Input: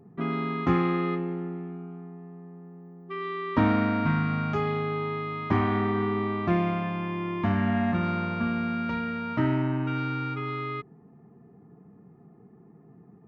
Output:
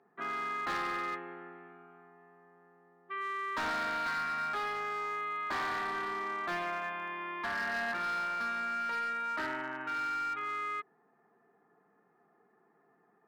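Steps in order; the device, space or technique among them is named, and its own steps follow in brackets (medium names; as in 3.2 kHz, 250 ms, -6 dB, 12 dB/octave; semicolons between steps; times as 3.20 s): megaphone (band-pass 680–3600 Hz; peaking EQ 1.6 kHz +9.5 dB 0.44 oct; hard clipper -28 dBFS, distortion -13 dB); trim -3 dB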